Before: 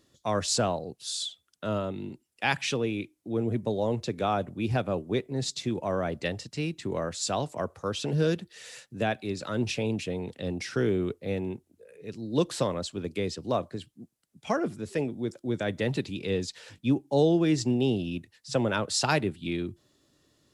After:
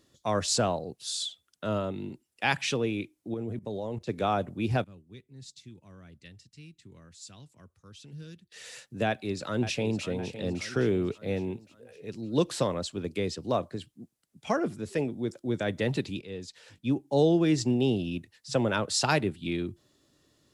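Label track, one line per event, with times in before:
3.340000	4.090000	level quantiser steps of 17 dB
4.840000	8.520000	passive tone stack bass-middle-treble 6-0-2
9.060000	10.060000	echo throw 0.56 s, feedback 50%, level -12 dB
16.210000	17.260000	fade in, from -14 dB

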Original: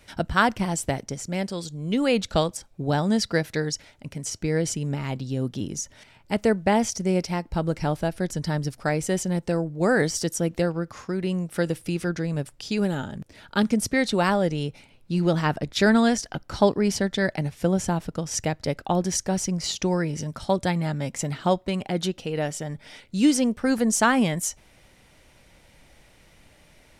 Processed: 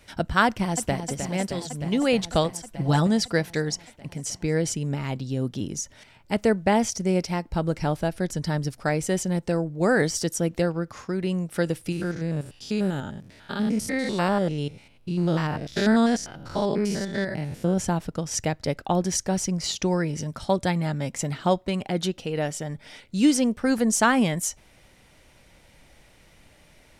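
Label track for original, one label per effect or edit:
0.460000	1.060000	echo throw 0.31 s, feedback 80%, level -8 dB
2.660000	3.070000	comb 6 ms, depth 86%
11.920000	17.780000	stepped spectrum every 0.1 s

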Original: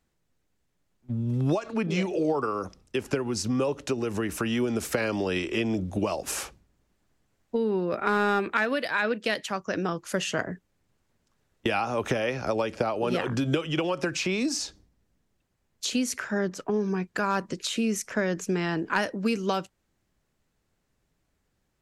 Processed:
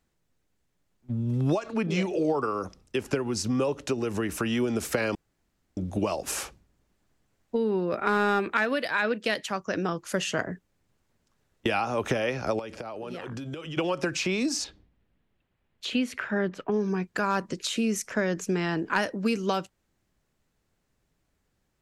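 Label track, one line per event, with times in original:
5.150000	5.770000	room tone
12.590000	13.770000	compressor 5:1, threshold -34 dBFS
14.640000	16.720000	resonant high shelf 4300 Hz -11 dB, Q 1.5

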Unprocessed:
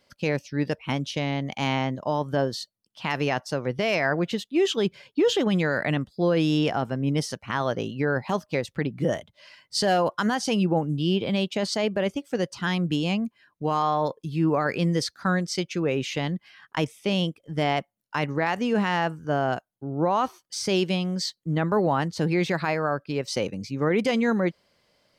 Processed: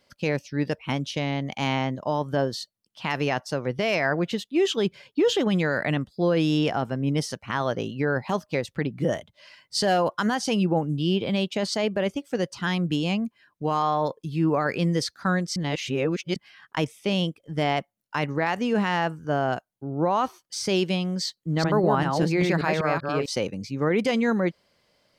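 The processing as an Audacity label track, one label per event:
15.560000	16.360000	reverse
21.250000	23.260000	reverse delay 0.195 s, level -3 dB

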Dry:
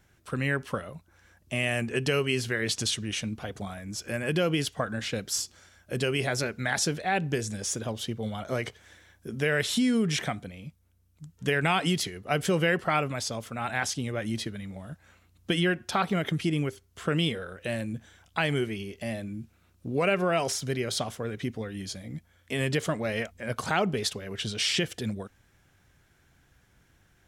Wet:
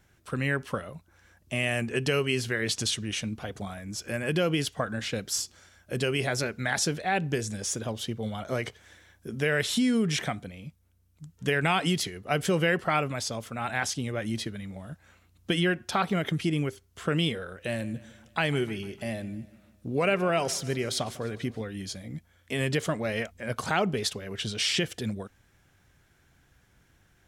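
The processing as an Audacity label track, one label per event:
17.600000	21.610000	feedback echo 0.151 s, feedback 53%, level -19.5 dB

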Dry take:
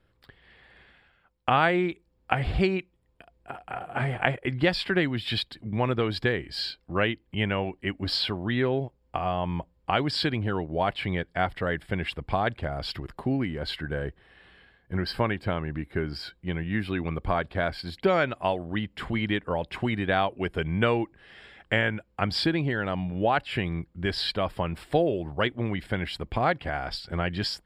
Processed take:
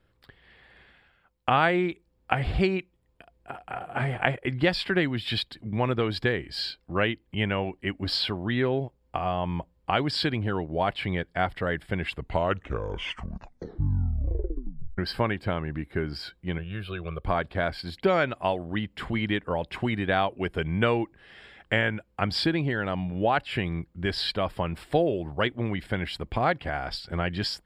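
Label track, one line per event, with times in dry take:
12.020000	12.020000	tape stop 2.96 s
16.580000	17.250000	fixed phaser centre 1300 Hz, stages 8

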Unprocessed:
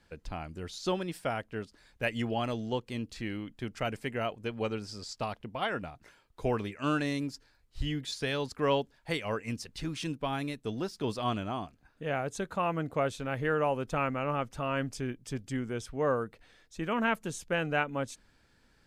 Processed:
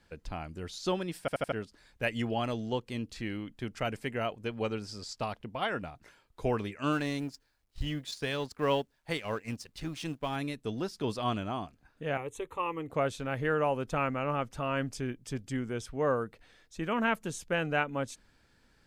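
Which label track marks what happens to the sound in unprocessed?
1.200000	1.200000	stutter in place 0.08 s, 4 plays
6.920000	10.360000	G.711 law mismatch coded by A
12.170000	12.900000	fixed phaser centre 1000 Hz, stages 8

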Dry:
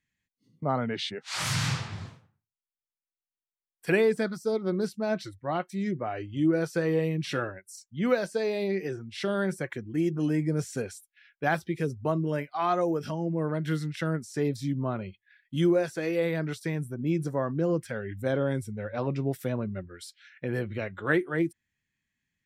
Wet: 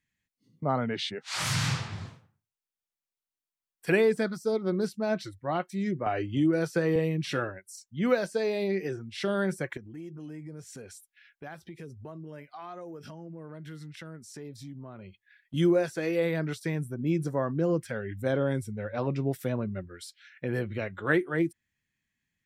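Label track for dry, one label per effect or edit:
6.060000	6.960000	three-band squash depth 70%
9.770000	15.540000	compressor 3:1, threshold -44 dBFS

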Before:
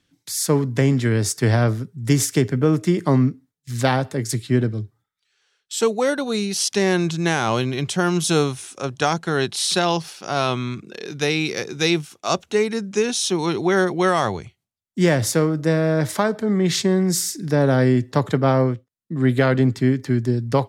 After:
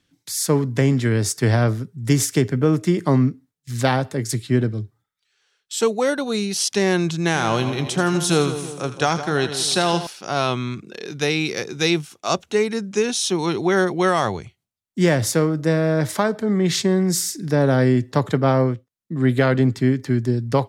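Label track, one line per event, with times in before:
7.190000	10.070000	split-band echo split 1100 Hz, lows 0.162 s, highs 82 ms, level -10.5 dB

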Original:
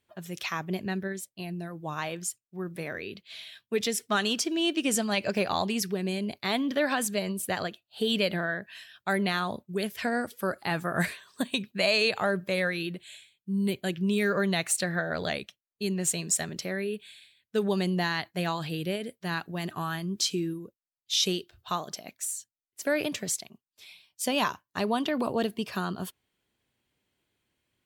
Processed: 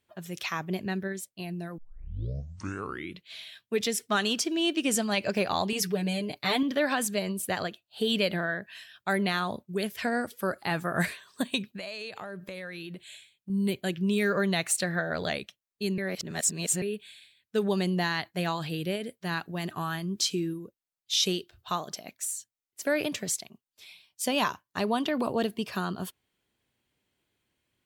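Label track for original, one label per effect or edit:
1.780000	1.780000	tape start 1.52 s
5.720000	6.630000	comb 6.7 ms, depth 83%
11.730000	13.500000	compressor, threshold -36 dBFS
15.980000	16.820000	reverse

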